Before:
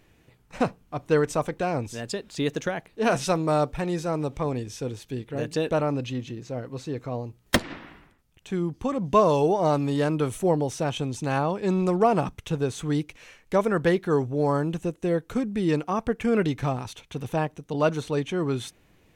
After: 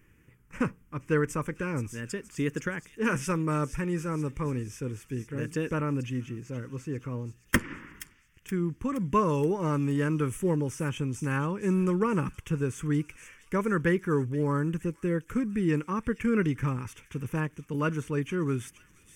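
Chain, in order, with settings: fixed phaser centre 1700 Hz, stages 4; thin delay 0.473 s, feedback 58%, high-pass 3700 Hz, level -9.5 dB

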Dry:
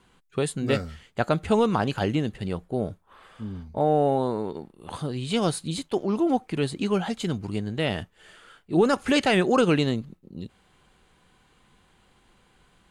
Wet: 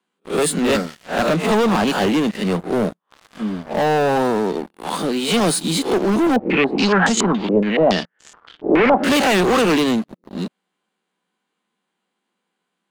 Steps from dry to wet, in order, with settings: spectral swells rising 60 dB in 0.30 s; steep high-pass 170 Hz 72 dB/oct; sample leveller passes 5; 6.36–9.04 stepped low-pass 7.1 Hz 530–7100 Hz; gain -5.5 dB

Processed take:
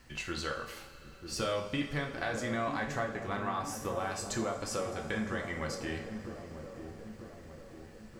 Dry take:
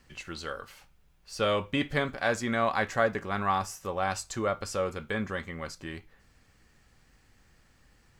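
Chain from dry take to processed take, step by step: compressor 6:1, threshold -36 dBFS, peak gain reduction 15 dB; dark delay 0.943 s, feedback 55%, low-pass 740 Hz, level -7 dB; on a send at -2 dB: reverb, pre-delay 3 ms; on the sum: gain +2.5 dB

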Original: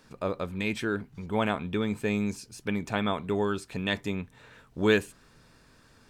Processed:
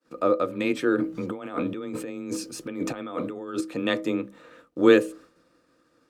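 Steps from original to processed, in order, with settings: notches 60/120/180/240/300/360/420/480/540/600 Hz; expander -50 dBFS; low shelf 98 Hz -11.5 dB; 0.98–3.61 negative-ratio compressor -39 dBFS, ratio -1; small resonant body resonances 300/480/1200 Hz, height 15 dB, ringing for 45 ms; frequency shift +20 Hz

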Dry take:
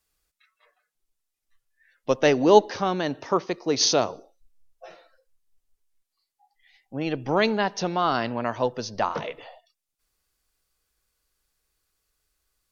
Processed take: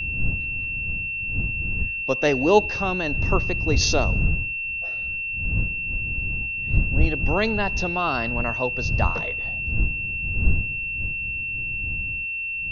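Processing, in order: wind noise 110 Hz -30 dBFS; low shelf 110 Hz +7.5 dB; whine 2700 Hz -24 dBFS; gain -2 dB

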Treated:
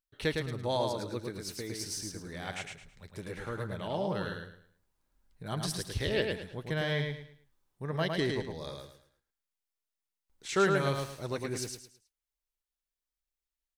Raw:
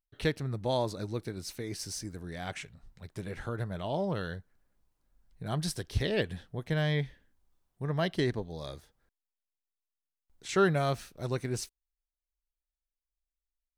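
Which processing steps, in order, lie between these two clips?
low shelf 240 Hz -6 dB; notch 700 Hz, Q 12; feedback echo 0.108 s, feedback 30%, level -4 dB

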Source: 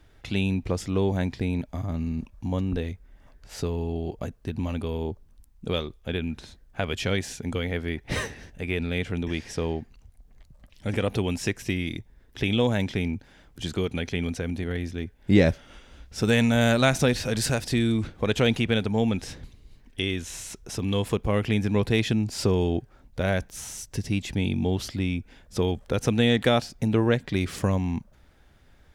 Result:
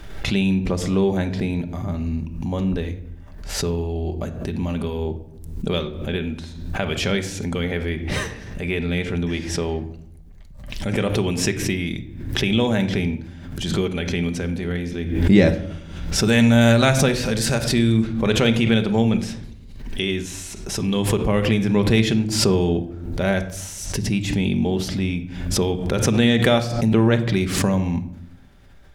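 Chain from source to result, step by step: reverb RT60 0.75 s, pre-delay 5 ms, DRR 7 dB; backwards sustainer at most 55 dB/s; gain +3 dB

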